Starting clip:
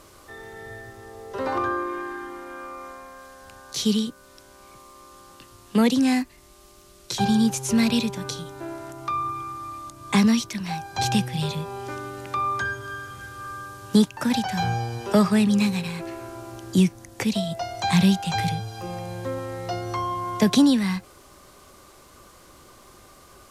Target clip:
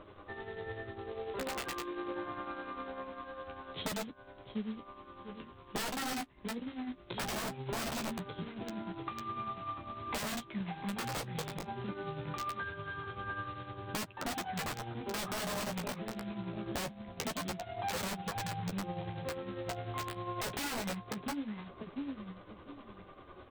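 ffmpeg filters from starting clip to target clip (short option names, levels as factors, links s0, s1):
-filter_complex "[0:a]lowpass=f=2400:p=1,asplit=2[s0][s1];[s1]adelay=696,lowpass=f=1800:p=1,volume=0.316,asplit=2[s2][s3];[s3]adelay=696,lowpass=f=1800:p=1,volume=0.24,asplit=2[s4][s5];[s5]adelay=696,lowpass=f=1800:p=1,volume=0.24[s6];[s2][s4][s6]amix=inputs=3:normalize=0[s7];[s0][s7]amix=inputs=2:normalize=0,tremolo=f=10:d=0.57,equalizer=f=320:w=0.32:g=4,aresample=8000,acrusher=bits=3:mode=log:mix=0:aa=0.000001,aresample=44100,aeval=exprs='(mod(7.08*val(0)+1,2)-1)/7.08':c=same,acompressor=threshold=0.0224:ratio=10,flanger=delay=9.7:depth=7.1:regen=-21:speed=0.22:shape=sinusoidal,volume=1.12"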